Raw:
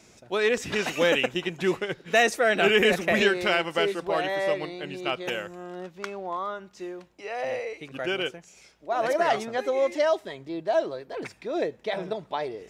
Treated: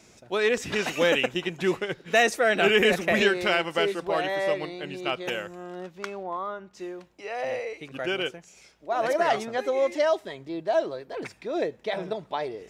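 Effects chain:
0:06.23–0:06.74: high-shelf EQ 3,500 Hz −11.5 dB

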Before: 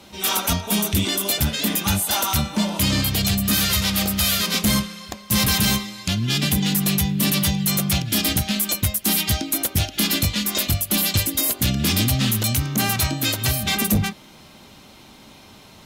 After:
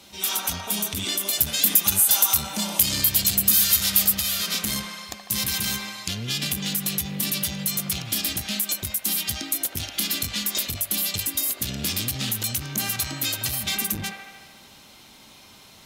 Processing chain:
high-shelf EQ 2,300 Hz +9.5 dB
delay with a band-pass on its return 75 ms, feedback 69%, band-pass 1,100 Hz, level −5.5 dB
downward compressor, threshold −14 dBFS, peak gain reduction 6 dB
0:01.33–0:04.15: high-shelf EQ 7,200 Hz +11.5 dB
saturating transformer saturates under 2,100 Hz
level −7.5 dB

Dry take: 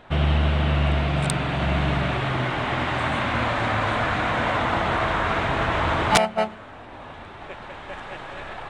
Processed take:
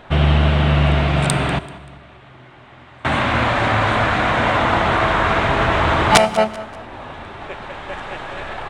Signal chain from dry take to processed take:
0:01.58–0:03.05: gate with flip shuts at −20 dBFS, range −25 dB
repeating echo 193 ms, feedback 37%, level −18.5 dB
convolution reverb RT60 1.2 s, pre-delay 3 ms, DRR 15.5 dB
level +6 dB

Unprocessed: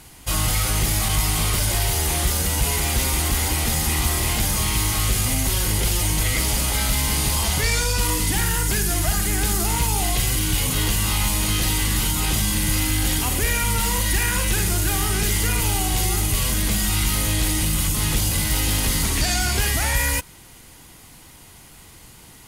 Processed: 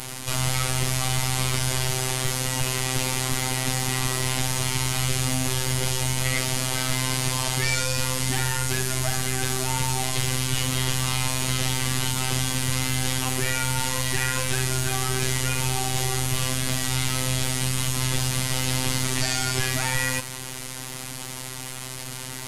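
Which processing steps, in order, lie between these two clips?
linear delta modulator 64 kbit/s, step −26 dBFS
phases set to zero 129 Hz

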